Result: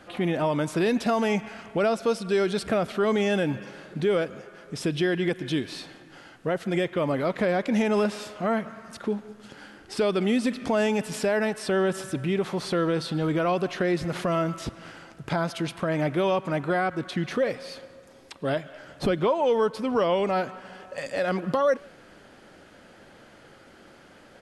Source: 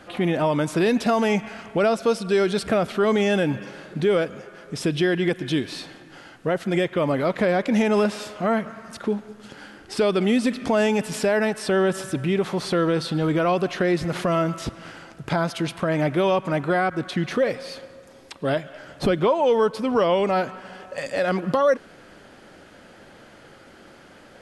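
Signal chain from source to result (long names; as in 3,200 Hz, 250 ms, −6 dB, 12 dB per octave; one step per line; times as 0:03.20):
far-end echo of a speakerphone 160 ms, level −25 dB
level −3.5 dB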